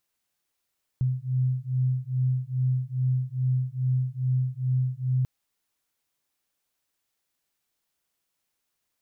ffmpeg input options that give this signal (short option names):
-f lavfi -i "aevalsrc='0.0501*(sin(2*PI*127*t)+sin(2*PI*129.4*t))':d=4.24:s=44100"